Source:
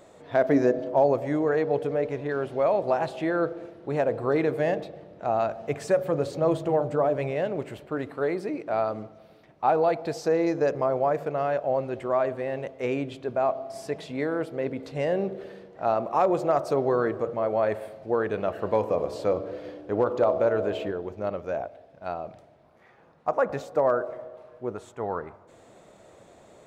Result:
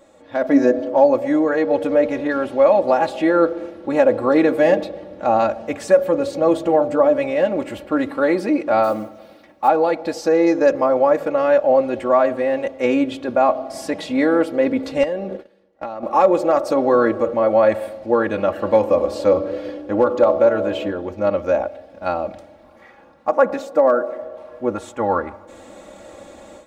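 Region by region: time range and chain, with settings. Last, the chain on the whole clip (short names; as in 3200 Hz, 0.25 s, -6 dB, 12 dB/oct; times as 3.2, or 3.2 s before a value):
8.83–9.68 low shelf 120 Hz -8 dB + modulation noise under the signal 32 dB
15.03–16.03 gate -37 dBFS, range -24 dB + compressor 12:1, threshold -32 dBFS
23.29–24.21 resonant low shelf 150 Hz -7 dB, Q 1.5 + short-mantissa float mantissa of 8-bit
whole clip: comb 3.6 ms, depth 82%; AGC gain up to 11.5 dB; gain -1.5 dB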